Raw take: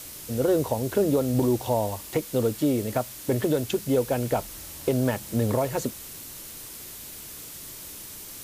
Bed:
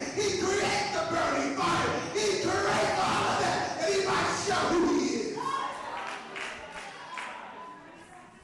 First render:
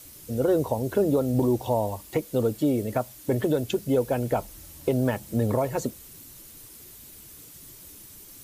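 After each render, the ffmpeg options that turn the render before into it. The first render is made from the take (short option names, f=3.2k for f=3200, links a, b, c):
-af "afftdn=nr=9:nf=-41"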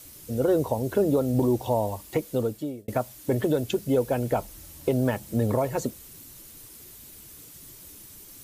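-filter_complex "[0:a]asplit=2[a][b];[a]atrim=end=2.88,asetpts=PTS-STARTPTS,afade=t=out:st=2.29:d=0.59[c];[b]atrim=start=2.88,asetpts=PTS-STARTPTS,afade=t=in:d=0.004:c=hsin[d];[c][d]concat=n=2:v=0:a=1"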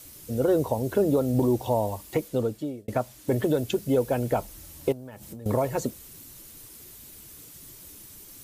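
-filter_complex "[0:a]asettb=1/sr,asplit=3[a][b][c];[a]atrim=end=2.284[d];[b]atrim=start=2.28:end=3.28,asetpts=PTS-STARTPTS,afade=t=in:d=0.004:c=qsin,afade=t=out:st=0.996:d=0.004:c=qsin,highshelf=f=12k:g=-10[e];[c]atrim=start=3.276[f];[d][e]acrossfade=d=0.004:c1=hsin:c2=qsin[g];[g][f]acrossfade=d=0.004:c1=qsin:c2=hsin,asettb=1/sr,asplit=3[h][i][j];[h]atrim=end=4.924[k];[i]atrim=start=4.92:end=5.46,asetpts=PTS-STARTPTS,afade=t=in:d=0.004:c=qsin,afade=t=out:st=0.536:d=0.004:c=qsin,acompressor=threshold=-36dB:ratio=16:attack=3.2:release=140:knee=1:detection=peak[l];[j]atrim=start=5.456[m];[k][l]acrossfade=d=0.004:c1=hsin:c2=qsin[n];[n][m]acrossfade=d=0.004:c1=qsin:c2=hsin"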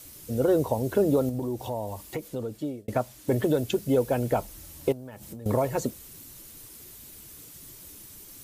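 -filter_complex "[0:a]asettb=1/sr,asplit=3[a][b][c];[a]atrim=end=1.294[d];[b]atrim=start=1.29:end=2.55,asetpts=PTS-STARTPTS,afade=t=in:d=0.004:c=qsin,afade=t=out:st=1.256:d=0.004:c=qsin,acompressor=threshold=-33dB:ratio=2:attack=3.2:release=140:knee=1:detection=peak[e];[c]atrim=start=2.546[f];[d][e]acrossfade=d=0.004:c1=hsin:c2=qsin[g];[g][f]acrossfade=d=0.004:c1=qsin:c2=hsin"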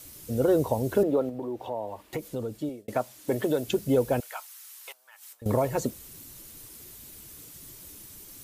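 -filter_complex "[0:a]asettb=1/sr,asplit=3[a][b][c];[a]atrim=end=1.034[d];[b]atrim=start=1.03:end=2.13,asetpts=PTS-STARTPTS,afade=t=in:d=0.004:c=qsin,afade=t=out:st=1.096:d=0.004:c=qsin,acrossover=split=260 3300:gain=0.224 1 0.158[e][f][g];[e][f][g]amix=inputs=3:normalize=0[h];[c]atrim=start=2.126[i];[d][h]acrossfade=d=0.004:c1=hsin:c2=qsin[j];[j][i]acrossfade=d=0.004:c1=qsin:c2=hsin,asettb=1/sr,asplit=3[k][l][m];[k]atrim=end=2.694[n];[l]atrim=start=2.69:end=3.67,asetpts=PTS-STARTPTS,afade=t=in:d=0.004:c=qsin,afade=t=out:st=0.976:d=0.004:c=qsin,highpass=f=280:p=1[o];[m]atrim=start=3.666[p];[n][o]acrossfade=d=0.004:c1=hsin:c2=qsin[q];[q][p]acrossfade=d=0.004:c1=qsin:c2=hsin,asettb=1/sr,asplit=3[r][s][t];[r]atrim=end=4.204[u];[s]atrim=start=4.2:end=5.42,asetpts=PTS-STARTPTS,afade=t=in:d=0.004:c=qsin,afade=t=out:st=1.216:d=0.004:c=qsin,highpass=f=1.1k:w=0.5412,highpass=f=1.1k:w=1.3066[v];[t]atrim=start=5.416[w];[u][v]acrossfade=d=0.004:c1=hsin:c2=qsin[x];[x][w]acrossfade=d=0.004:c1=qsin:c2=hsin"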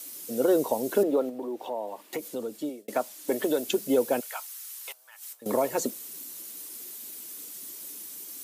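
-af "highpass=f=220:w=0.5412,highpass=f=220:w=1.3066,highshelf=f=3.8k:g=6.5"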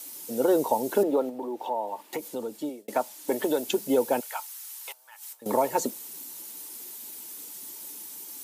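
-af "equalizer=f=880:t=o:w=0.2:g=11"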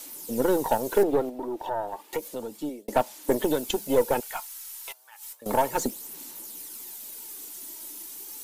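-af "aphaser=in_gain=1:out_gain=1:delay=3.1:decay=0.37:speed=0.32:type=sinusoidal,aeval=exprs='0.355*(cos(1*acos(clip(val(0)/0.355,-1,1)))-cos(1*PI/2))+0.0282*(cos(6*acos(clip(val(0)/0.355,-1,1)))-cos(6*PI/2))':c=same"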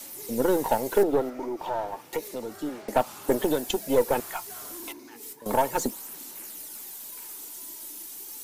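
-filter_complex "[1:a]volume=-19.5dB[a];[0:a][a]amix=inputs=2:normalize=0"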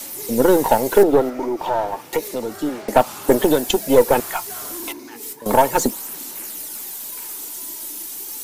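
-af "volume=9dB,alimiter=limit=-1dB:level=0:latency=1"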